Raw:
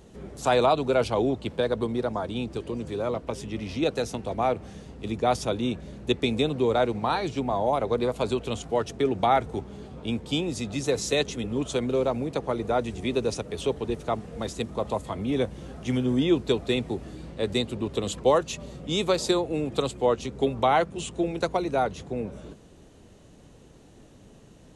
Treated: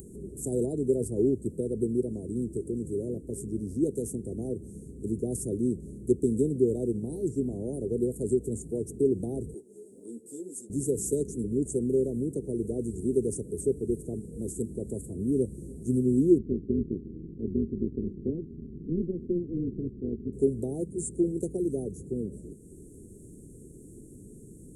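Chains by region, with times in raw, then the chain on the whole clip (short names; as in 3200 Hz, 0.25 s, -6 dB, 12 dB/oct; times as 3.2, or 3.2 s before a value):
9.54–10.7 HPF 500 Hz + ensemble effect
16.38–20.33 synth low-pass 250 Hz, resonance Q 2.1 + AM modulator 170 Hz, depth 70%
whole clip: Chebyshev band-stop 400–8200 Hz, order 4; low shelf 460 Hz -10 dB; upward compressor, threshold -49 dBFS; gain +8.5 dB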